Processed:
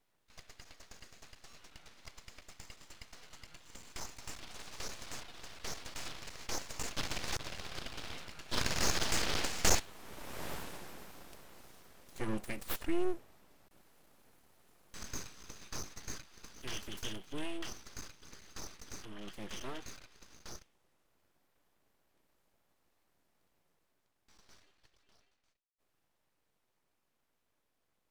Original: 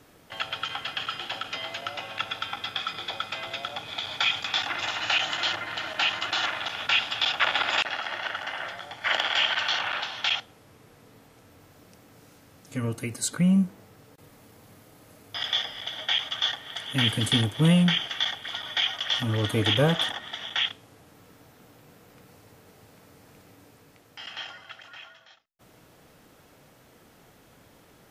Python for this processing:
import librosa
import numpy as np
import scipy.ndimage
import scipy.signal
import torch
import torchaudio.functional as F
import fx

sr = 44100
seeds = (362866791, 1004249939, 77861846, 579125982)

y = fx.doppler_pass(x, sr, speed_mps=20, closest_m=3.4, pass_at_s=10.5)
y = np.abs(y)
y = y * librosa.db_to_amplitude(15.5)